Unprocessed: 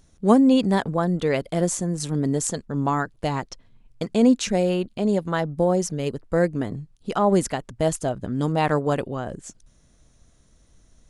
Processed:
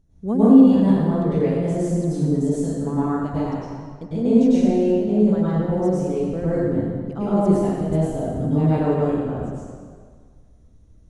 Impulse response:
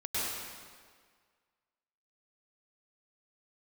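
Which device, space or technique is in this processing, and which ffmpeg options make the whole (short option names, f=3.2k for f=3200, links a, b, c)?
stairwell: -filter_complex "[0:a]tiltshelf=f=670:g=9[a];[1:a]atrim=start_sample=2205[b];[a][b]afir=irnorm=-1:irlink=0,volume=-8.5dB"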